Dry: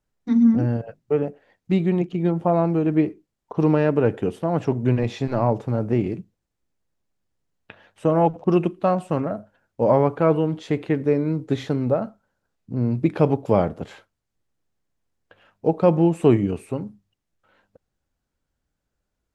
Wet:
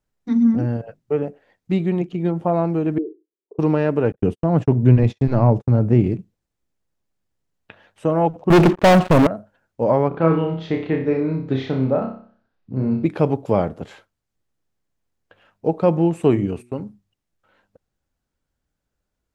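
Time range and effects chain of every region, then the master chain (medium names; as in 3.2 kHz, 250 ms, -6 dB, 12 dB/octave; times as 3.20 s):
2.98–3.59 s: Butterworth band-pass 390 Hz, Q 3.1 + doubling 38 ms -12 dB
4.12–6.19 s: gate -33 dBFS, range -56 dB + bass shelf 220 Hz +12 dB
8.50–9.27 s: low-pass 2.3 kHz + waveshaping leveller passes 5
10.08–13.05 s: low-pass 4.7 kHz 24 dB/octave + flutter echo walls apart 5.2 m, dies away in 0.47 s
16.11–16.80 s: gate -42 dBFS, range -18 dB + de-hum 121 Hz, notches 3
whole clip: none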